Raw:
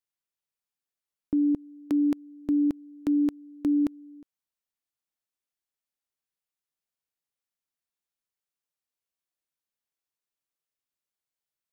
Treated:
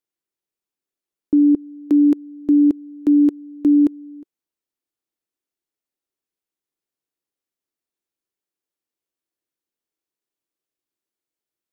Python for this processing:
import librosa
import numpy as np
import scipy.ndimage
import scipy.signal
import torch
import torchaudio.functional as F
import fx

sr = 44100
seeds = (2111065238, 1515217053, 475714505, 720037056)

y = fx.peak_eq(x, sr, hz=340.0, db=12.5, octaves=0.99)